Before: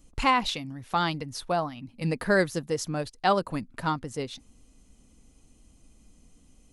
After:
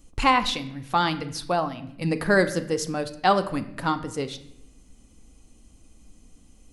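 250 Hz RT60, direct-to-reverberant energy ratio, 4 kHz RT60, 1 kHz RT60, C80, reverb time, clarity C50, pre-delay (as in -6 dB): 1.1 s, 9.5 dB, 0.60 s, 0.70 s, 16.0 dB, 0.80 s, 13.5 dB, 3 ms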